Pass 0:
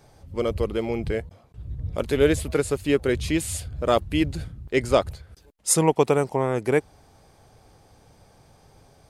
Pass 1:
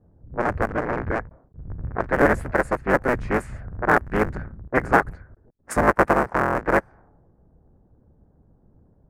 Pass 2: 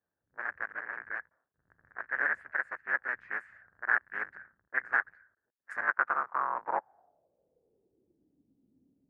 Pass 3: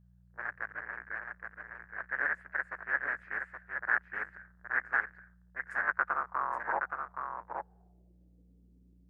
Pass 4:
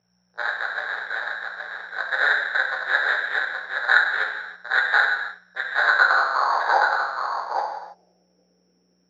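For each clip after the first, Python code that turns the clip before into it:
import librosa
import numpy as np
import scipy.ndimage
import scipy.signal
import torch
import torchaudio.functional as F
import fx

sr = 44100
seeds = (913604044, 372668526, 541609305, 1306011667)

y1 = fx.cycle_switch(x, sr, every=3, mode='inverted')
y1 = fx.env_lowpass(y1, sr, base_hz=300.0, full_db=-19.0)
y1 = fx.high_shelf_res(y1, sr, hz=2400.0, db=-13.0, q=3.0)
y2 = fx.filter_sweep_bandpass(y1, sr, from_hz=1700.0, to_hz=270.0, start_s=5.79, end_s=8.45, q=5.6)
y2 = y2 * 10.0 ** (-2.0 / 20.0)
y3 = fx.dmg_buzz(y2, sr, base_hz=60.0, harmonics=3, level_db=-60.0, tilt_db=-3, odd_only=False)
y3 = y3 + 10.0 ** (-5.5 / 20.0) * np.pad(y3, (int(821 * sr / 1000.0), 0))[:len(y3)]
y3 = y3 * 10.0 ** (-2.0 / 20.0)
y4 = fx.rev_gated(y3, sr, seeds[0], gate_ms=350, shape='falling', drr_db=-1.0)
y4 = (np.kron(y4[::8], np.eye(8)[0]) * 8)[:len(y4)]
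y4 = fx.cabinet(y4, sr, low_hz=420.0, low_slope=12, high_hz=2700.0, hz=(500.0, 780.0, 1500.0), db=(8, 8, 5))
y4 = y4 * 10.0 ** (6.0 / 20.0)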